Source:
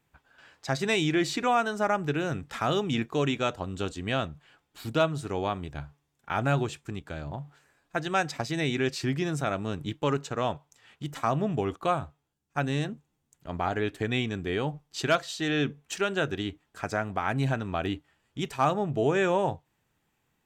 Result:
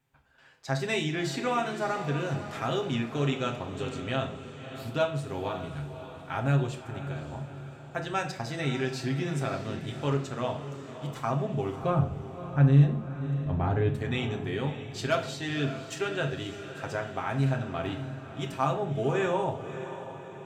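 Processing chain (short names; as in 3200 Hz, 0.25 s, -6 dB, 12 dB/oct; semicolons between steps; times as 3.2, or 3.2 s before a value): 11.82–13.93 RIAA curve playback; diffused feedback echo 0.584 s, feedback 51%, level -11 dB; reverb RT60 0.60 s, pre-delay 8 ms, DRR 2 dB; gain -5.5 dB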